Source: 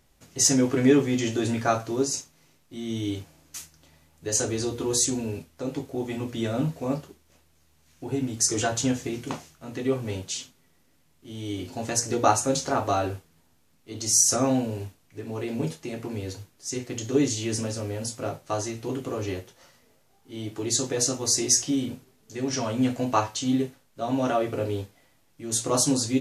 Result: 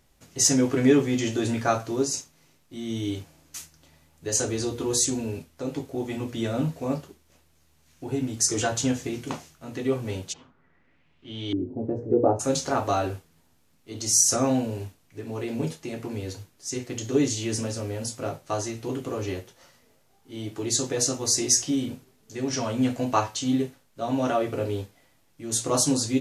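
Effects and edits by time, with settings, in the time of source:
0:10.32–0:12.39: auto-filter low-pass saw up 0.72 Hz → 0.15 Hz 310–3,800 Hz

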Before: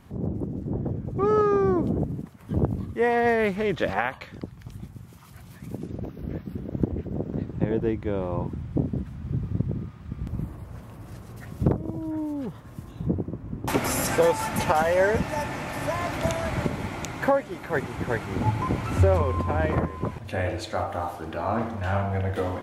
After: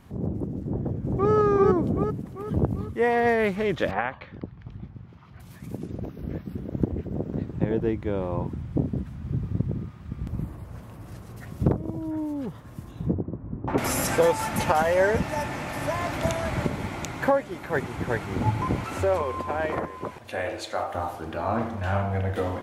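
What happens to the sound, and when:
0:00.64–0:01.32: delay throw 390 ms, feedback 50%, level −0.5 dB
0:03.91–0:05.40: high-frequency loss of the air 270 metres
0:13.13–0:13.78: low-pass filter 1,300 Hz
0:18.84–0:20.95: bass and treble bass −13 dB, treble +1 dB

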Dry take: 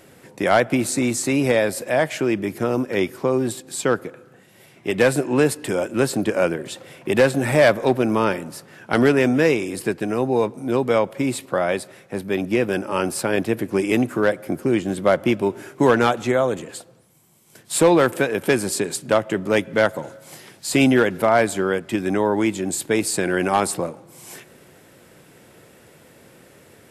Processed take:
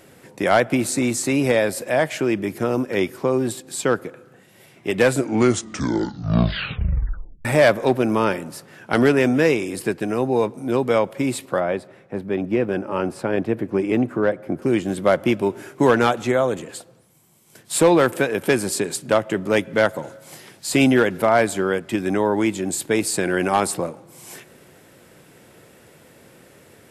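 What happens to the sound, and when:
0:05.05: tape stop 2.40 s
0:11.60–0:14.62: low-pass filter 1,300 Hz 6 dB per octave

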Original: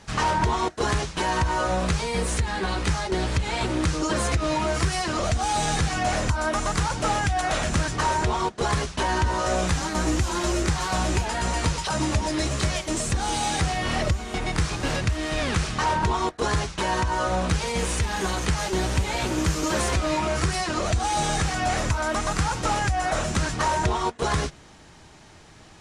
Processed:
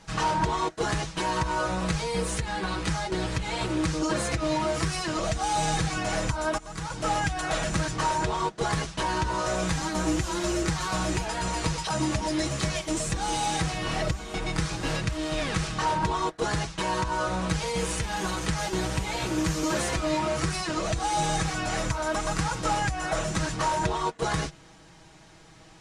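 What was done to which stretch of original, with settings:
0:06.58–0:07.17: fade in, from −21.5 dB
whole clip: comb filter 6.2 ms, depth 57%; level −4 dB

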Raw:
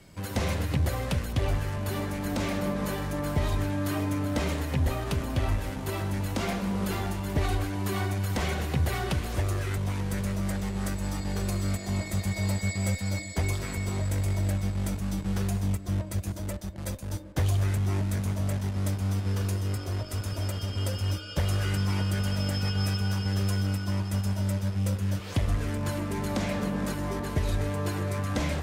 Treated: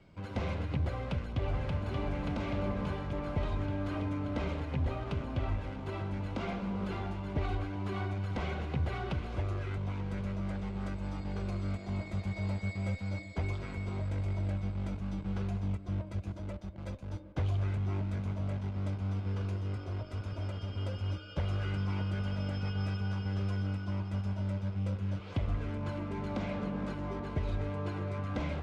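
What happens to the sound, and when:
0:00.95–0:01.76: delay throw 580 ms, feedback 75%, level −3 dB
whole clip: low-pass filter 2,900 Hz 12 dB per octave; notch filter 1,800 Hz, Q 7.6; level −6 dB

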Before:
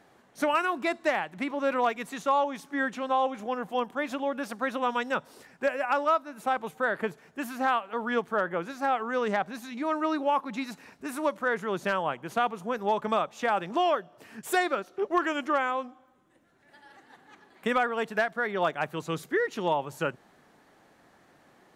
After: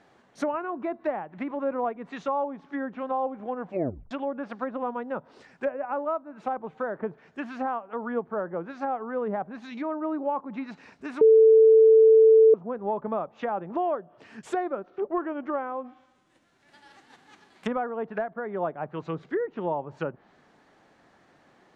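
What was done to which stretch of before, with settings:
0:03.66: tape stop 0.45 s
0:11.21–0:12.54: beep over 443 Hz −11.5 dBFS
0:15.84–0:17.71: spectral envelope flattened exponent 0.6
whole clip: treble cut that deepens with the level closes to 840 Hz, closed at −26 dBFS; low-pass filter 6,600 Hz 12 dB per octave

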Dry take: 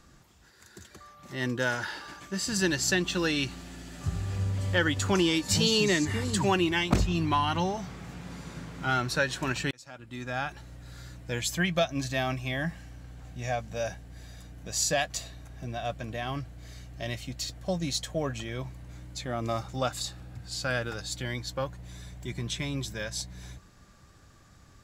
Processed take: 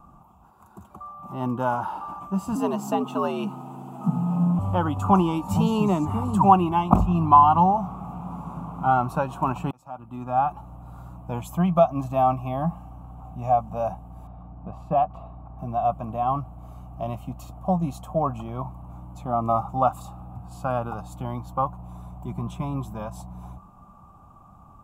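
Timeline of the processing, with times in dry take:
0:02.55–0:04.59: frequency shifter +77 Hz
0:14.27–0:15.59: high-frequency loss of the air 440 metres
whole clip: drawn EQ curve 130 Hz 0 dB, 190 Hz +6 dB, 330 Hz −3 dB, 510 Hz −5 dB, 760 Hz +12 dB, 1,200 Hz +9 dB, 1,800 Hz −28 dB, 2,600 Hz −11 dB, 4,500 Hz −27 dB, 13,000 Hz −5 dB; level +3.5 dB

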